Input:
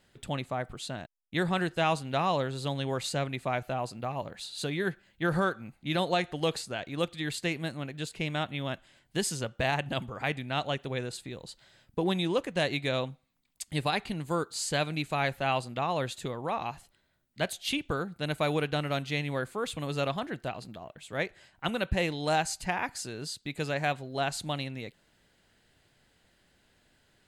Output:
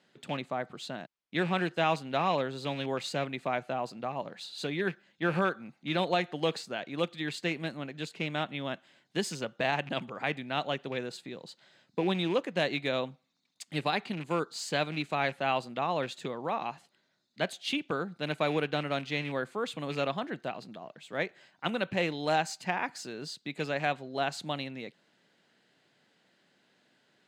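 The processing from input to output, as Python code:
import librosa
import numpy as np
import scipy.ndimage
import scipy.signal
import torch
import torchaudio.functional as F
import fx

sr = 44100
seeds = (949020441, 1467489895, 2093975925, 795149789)

y = fx.rattle_buzz(x, sr, strikes_db=-35.0, level_db=-32.0)
y = scipy.signal.sosfilt(scipy.signal.butter(4, 160.0, 'highpass', fs=sr, output='sos'), y)
y = fx.high_shelf(y, sr, hz=7500.0, db=7.0)
y = np.repeat(y[::2], 2)[:len(y)]
y = fx.air_absorb(y, sr, metres=95.0)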